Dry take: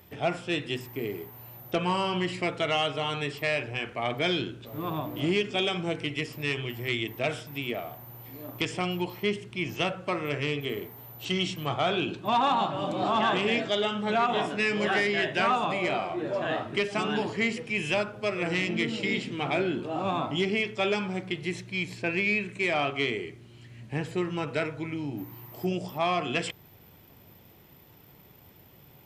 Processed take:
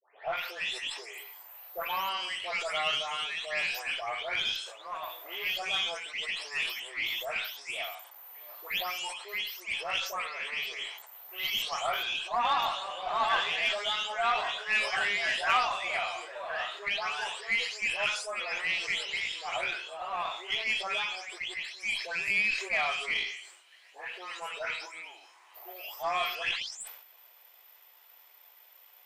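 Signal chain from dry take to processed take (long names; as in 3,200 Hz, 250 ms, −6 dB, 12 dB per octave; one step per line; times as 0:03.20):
every frequency bin delayed by itself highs late, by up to 372 ms
Bessel high-pass filter 970 Hz, order 8
harmonic generator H 3 −22 dB, 6 −30 dB, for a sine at −15.5 dBFS
level that may fall only so fast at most 72 dB per second
level +3.5 dB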